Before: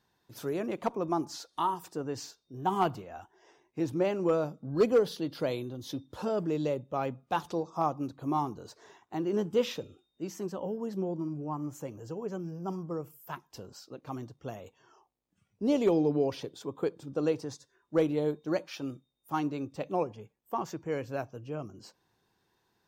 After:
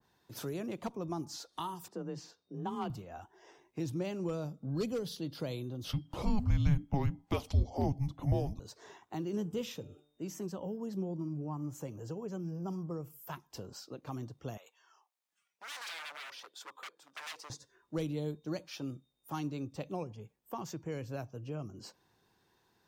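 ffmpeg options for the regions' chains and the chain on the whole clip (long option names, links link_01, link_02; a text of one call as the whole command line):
ffmpeg -i in.wav -filter_complex "[0:a]asettb=1/sr,asplit=3[link_01][link_02][link_03];[link_01]atrim=end=1.884[link_04];[link_02]atrim=start=1.88:end=2.9,asetpts=PTS-STARTPTS,afade=type=in:duration=0.004:curve=qsin,afade=type=out:start_time=1.016:duration=0.004:curve=qsin,highpass=57,aemphasis=mode=reproduction:type=75kf,afreqshift=28[link_05];[link_03]atrim=start=2.896[link_06];[link_04][link_05]acrossfade=duration=0.004:curve1=hsin:curve2=qsin[link_07];[link_07][link_06]acrossfade=duration=0.004:curve1=qsin:curve2=hsin,asettb=1/sr,asplit=3[link_08][link_09][link_10];[link_08]atrim=end=5.844[link_11];[link_09]atrim=start=5.84:end=8.6,asetpts=PTS-STARTPTS,afade=type=in:duration=0.004:curve=qsin,afade=type=out:start_time=2.756:duration=0.004:curve=qsin,equalizer=frequency=1400:width=0.75:gain=12,afreqshift=-420[link_12];[link_10]atrim=start=8.596[link_13];[link_11][link_12]acrossfade=duration=0.004:curve1=hsin:curve2=qsin[link_14];[link_14][link_13]acrossfade=duration=0.004:curve1=qsin:curve2=hsin,asettb=1/sr,asplit=3[link_15][link_16][link_17];[link_15]atrim=end=9.364[link_18];[link_16]atrim=start=9.36:end=10.44,asetpts=PTS-STARTPTS,afade=type=in:duration=0.004:curve=qsin,afade=type=out:start_time=1.076:duration=0.004:curve=qsin,equalizer=frequency=4300:width=1.9:gain=-6,bandreject=frequency=147.3:width_type=h:width=4,bandreject=frequency=294.6:width_type=h:width=4,bandreject=frequency=441.9:width_type=h:width=4,bandreject=frequency=589.2:width_type=h:width=4,bandreject=frequency=736.5:width_type=h:width=4,bandreject=frequency=883.8:width_type=h:width=4,bandreject=frequency=1031.1:width_type=h:width=4,bandreject=frequency=1178.4:width_type=h:width=4,bandreject=frequency=1325.7:width_type=h:width=4,bandreject=frequency=1473:width_type=h:width=4,bandreject=frequency=1620.3:width_type=h:width=4[link_19];[link_17]atrim=start=10.436[link_20];[link_18][link_19]acrossfade=duration=0.004:curve1=hsin:curve2=qsin[link_21];[link_21][link_20]acrossfade=duration=0.004:curve1=qsin:curve2=hsin,asettb=1/sr,asplit=3[link_22][link_23][link_24];[link_22]atrim=end=14.574[link_25];[link_23]atrim=start=14.57:end=17.5,asetpts=PTS-STARTPTS,afade=type=in:duration=0.004:curve=qsin,afade=type=out:start_time=2.926:duration=0.004:curve=qsin,aeval=exprs='0.0178*(abs(mod(val(0)/0.0178+3,4)-2)-1)':channel_layout=same,tremolo=f=1.4:d=0.3,highpass=1100[link_26];[link_24]atrim=start=17.496[link_27];[link_25][link_26]acrossfade=duration=0.004:curve1=hsin:curve2=qsin[link_28];[link_28][link_27]acrossfade=duration=0.004:curve1=qsin:curve2=hsin,acrossover=split=190|3000[link_29][link_30][link_31];[link_30]acompressor=threshold=-46dB:ratio=2.5[link_32];[link_29][link_32][link_31]amix=inputs=3:normalize=0,adynamicequalizer=threshold=0.00141:dfrequency=1600:dqfactor=0.7:tfrequency=1600:tqfactor=0.7:attack=5:release=100:ratio=0.375:range=2:mode=cutabove:tftype=highshelf,volume=2dB" out.wav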